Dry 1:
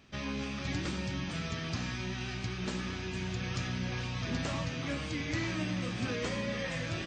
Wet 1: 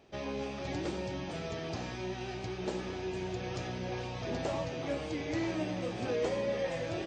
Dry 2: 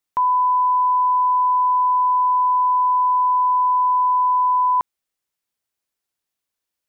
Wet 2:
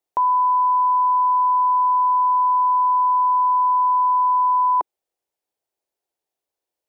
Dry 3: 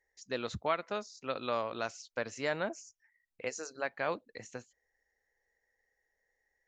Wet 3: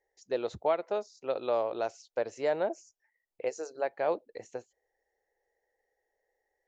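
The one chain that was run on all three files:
high-order bell 540 Hz +11.5 dB; trim -5 dB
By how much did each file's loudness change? -1.0 LU, -0.5 LU, +4.0 LU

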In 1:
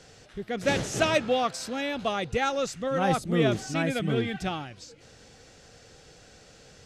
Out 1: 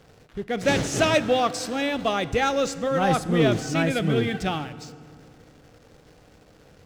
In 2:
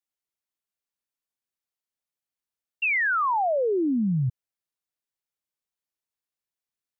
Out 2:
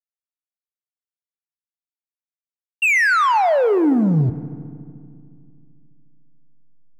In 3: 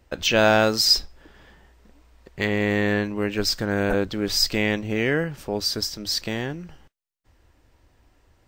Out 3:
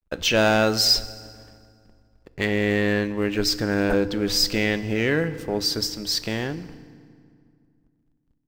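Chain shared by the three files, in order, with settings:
waveshaping leveller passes 1; hysteresis with a dead band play -47 dBFS; FDN reverb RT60 2.2 s, low-frequency decay 1.35×, high-frequency decay 0.7×, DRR 14 dB; peak normalisation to -9 dBFS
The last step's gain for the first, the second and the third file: +0.5 dB, +7.0 dB, -3.0 dB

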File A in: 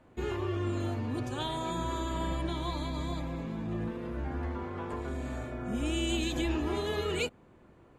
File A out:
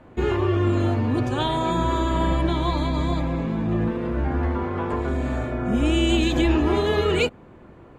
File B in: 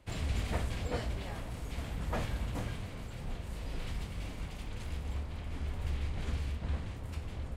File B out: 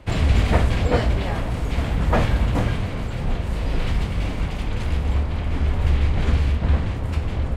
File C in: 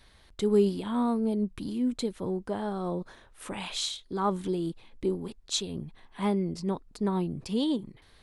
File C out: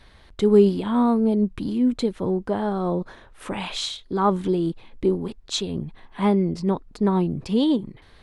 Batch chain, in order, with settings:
treble shelf 5.1 kHz -11.5 dB; normalise loudness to -23 LUFS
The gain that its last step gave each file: +11.5 dB, +16.5 dB, +8.0 dB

